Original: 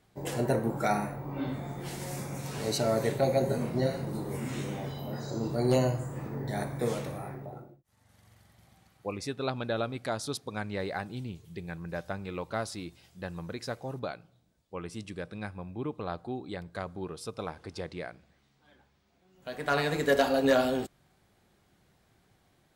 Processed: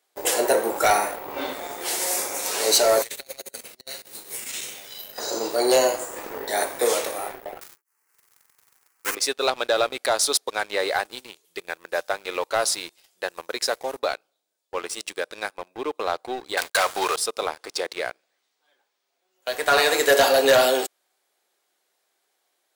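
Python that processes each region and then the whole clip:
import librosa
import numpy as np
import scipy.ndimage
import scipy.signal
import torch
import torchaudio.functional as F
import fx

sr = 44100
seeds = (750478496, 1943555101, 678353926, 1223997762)

y = fx.chain(x, sr, fx.curve_eq(hz=(120.0, 310.0, 970.0, 2700.0), db=(0, -17, -18, -3)),
    fx.over_compress(threshold_db=-39.0, ratio=-0.5), at=(3.02, 5.18))
y = fx.chain(y, sr, fx.halfwave_hold(),
    fx.peak_eq(hz=170.0, db=-9.0, octaves=1.5),
    fx.fixed_phaser(hz=1500.0, stages=4), at=(7.61, 9.15))
y = fx.chain(y, sr, fx.highpass(hz=180.0, slope=6),
    fx.peak_eq(hz=310.0, db=-15.0, octaves=2.1),
    fx.leveller(passes=5), at=(16.57, 17.16))
y = scipy.signal.sosfilt(scipy.signal.butter(4, 400.0, 'highpass', fs=sr, output='sos'), y)
y = fx.high_shelf(y, sr, hz=4000.0, db=10.5)
y = fx.leveller(y, sr, passes=3)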